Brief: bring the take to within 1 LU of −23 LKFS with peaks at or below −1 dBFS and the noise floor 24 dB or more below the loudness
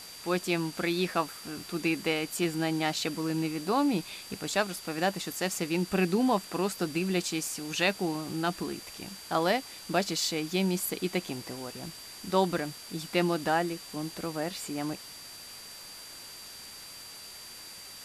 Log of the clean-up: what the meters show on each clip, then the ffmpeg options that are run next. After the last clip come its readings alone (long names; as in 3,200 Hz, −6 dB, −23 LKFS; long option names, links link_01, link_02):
interfering tone 4,700 Hz; level of the tone −47 dBFS; background noise floor −46 dBFS; target noise floor −55 dBFS; integrated loudness −30.5 LKFS; sample peak −12.5 dBFS; target loudness −23.0 LKFS
→ -af "bandreject=frequency=4700:width=30"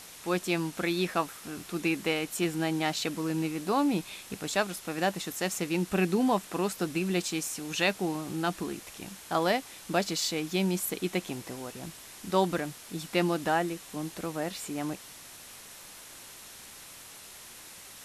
interfering tone none found; background noise floor −48 dBFS; target noise floor −55 dBFS
→ -af "afftdn=noise_reduction=7:noise_floor=-48"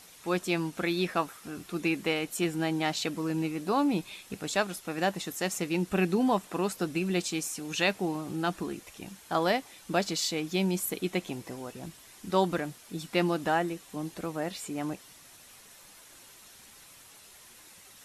background noise floor −54 dBFS; target noise floor −55 dBFS
→ -af "afftdn=noise_reduction=6:noise_floor=-54"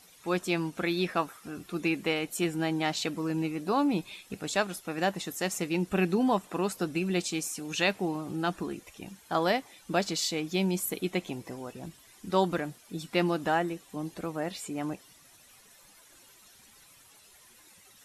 background noise floor −58 dBFS; integrated loudness −30.5 LKFS; sample peak −12.5 dBFS; target loudness −23.0 LKFS
→ -af "volume=7.5dB"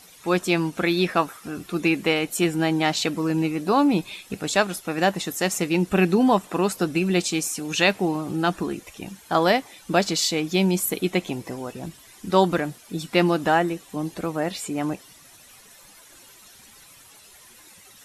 integrated loudness −23.0 LKFS; sample peak −5.0 dBFS; background noise floor −50 dBFS